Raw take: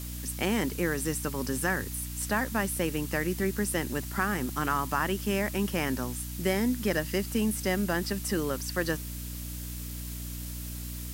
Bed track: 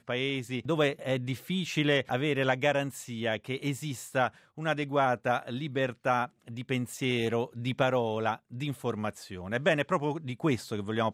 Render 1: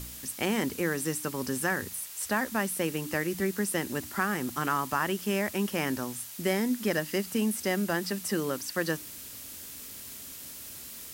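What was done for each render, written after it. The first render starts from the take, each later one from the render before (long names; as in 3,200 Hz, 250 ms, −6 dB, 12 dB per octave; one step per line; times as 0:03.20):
hum removal 60 Hz, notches 5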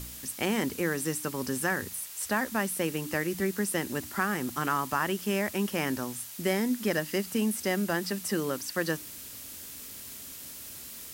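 no processing that can be heard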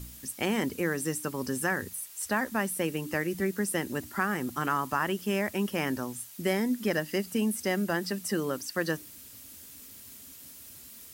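broadband denoise 7 dB, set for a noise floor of −44 dBFS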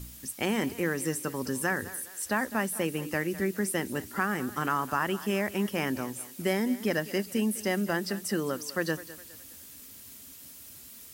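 feedback echo with a high-pass in the loop 206 ms, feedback 43%, high-pass 280 Hz, level −15.5 dB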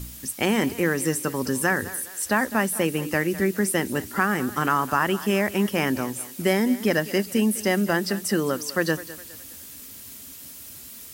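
level +6.5 dB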